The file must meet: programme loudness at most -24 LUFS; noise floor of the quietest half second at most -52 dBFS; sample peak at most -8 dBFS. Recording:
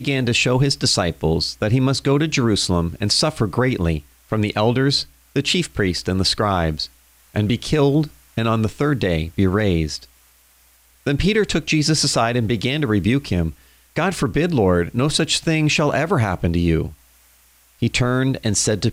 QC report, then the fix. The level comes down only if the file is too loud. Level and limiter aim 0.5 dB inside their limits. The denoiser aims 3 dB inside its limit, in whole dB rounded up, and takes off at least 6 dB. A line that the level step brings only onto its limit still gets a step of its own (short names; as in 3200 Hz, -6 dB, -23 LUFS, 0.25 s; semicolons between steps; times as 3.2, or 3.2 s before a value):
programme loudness -19.5 LUFS: fail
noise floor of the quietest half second -54 dBFS: OK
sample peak -6.5 dBFS: fail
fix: gain -5 dB